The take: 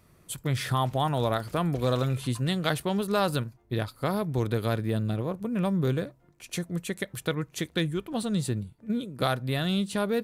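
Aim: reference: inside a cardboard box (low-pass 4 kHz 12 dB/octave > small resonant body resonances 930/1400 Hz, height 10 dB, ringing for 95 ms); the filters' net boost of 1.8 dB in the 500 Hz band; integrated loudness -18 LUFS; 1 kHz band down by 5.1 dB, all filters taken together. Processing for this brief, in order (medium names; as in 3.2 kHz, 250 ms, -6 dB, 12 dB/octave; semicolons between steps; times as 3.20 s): low-pass 4 kHz 12 dB/octave; peaking EQ 500 Hz +4.5 dB; peaking EQ 1 kHz -9 dB; small resonant body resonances 930/1400 Hz, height 10 dB, ringing for 95 ms; trim +11 dB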